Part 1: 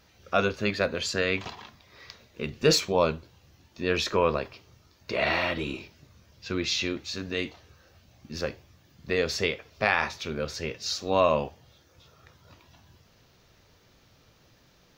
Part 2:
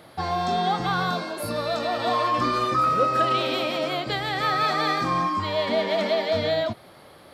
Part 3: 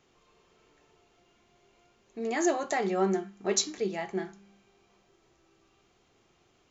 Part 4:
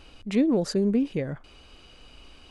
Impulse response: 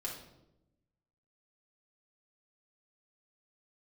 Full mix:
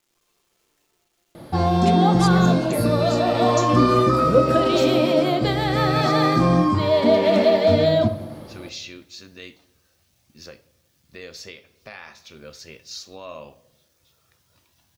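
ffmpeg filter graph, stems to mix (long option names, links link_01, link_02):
-filter_complex "[0:a]adelay=2050,volume=-12dB,asplit=2[link_01][link_02];[link_02]volume=-14.5dB[link_03];[1:a]tiltshelf=frequency=770:gain=9.5,adelay=1350,volume=1dB,asplit=2[link_04][link_05];[link_05]volume=-4dB[link_06];[2:a]volume=-10.5dB,asplit=2[link_07][link_08];[link_08]volume=-7dB[link_09];[3:a]alimiter=limit=-20.5dB:level=0:latency=1,adelay=1550,volume=-1.5dB[link_10];[link_01][link_07]amix=inputs=2:normalize=0,acrusher=bits=11:mix=0:aa=0.000001,alimiter=level_in=5dB:limit=-24dB:level=0:latency=1:release=384,volume=-5dB,volume=0dB[link_11];[4:a]atrim=start_sample=2205[link_12];[link_03][link_06][link_09]amix=inputs=3:normalize=0[link_13];[link_13][link_12]afir=irnorm=-1:irlink=0[link_14];[link_04][link_10][link_11][link_14]amix=inputs=4:normalize=0,highshelf=frequency=3400:gain=9.5"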